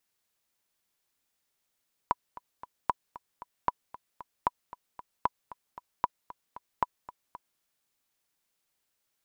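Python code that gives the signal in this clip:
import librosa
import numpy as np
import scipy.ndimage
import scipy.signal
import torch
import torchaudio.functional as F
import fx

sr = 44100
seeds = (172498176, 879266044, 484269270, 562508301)

y = fx.click_track(sr, bpm=229, beats=3, bars=7, hz=983.0, accent_db=18.0, level_db=-11.0)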